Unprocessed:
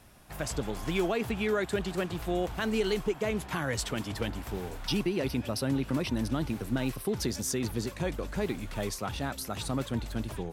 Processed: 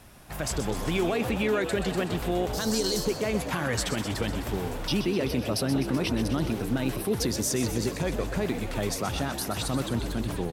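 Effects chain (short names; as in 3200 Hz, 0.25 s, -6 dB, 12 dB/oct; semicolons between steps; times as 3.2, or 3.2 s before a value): 2.53–3.05 resonant high shelf 3600 Hz +11.5 dB, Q 3; limiter -23 dBFS, peak gain reduction 10.5 dB; on a send: frequency-shifting echo 0.127 s, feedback 63%, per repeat +65 Hz, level -10 dB; on the sum: gain +5 dB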